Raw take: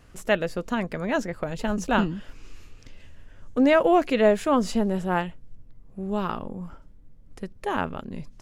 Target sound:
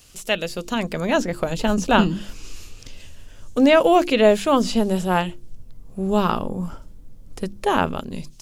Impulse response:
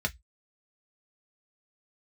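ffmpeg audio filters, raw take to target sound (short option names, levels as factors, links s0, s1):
-filter_complex "[0:a]acrossover=split=4000[s0][s1];[s1]acompressor=threshold=0.00251:ratio=4:attack=1:release=60[s2];[s0][s2]amix=inputs=2:normalize=0,bandreject=f=50:t=h:w=6,bandreject=f=100:t=h:w=6,bandreject=f=150:t=h:w=6,bandreject=f=200:t=h:w=6,bandreject=f=250:t=h:w=6,bandreject=f=300:t=h:w=6,bandreject=f=350:t=h:w=6,acrossover=split=1900[s3][s4];[s3]dynaudnorm=f=320:g=5:m=3.76[s5];[s4]aexciter=amount=4.7:drive=7.3:freq=2400[s6];[s5][s6]amix=inputs=2:normalize=0,volume=0.794"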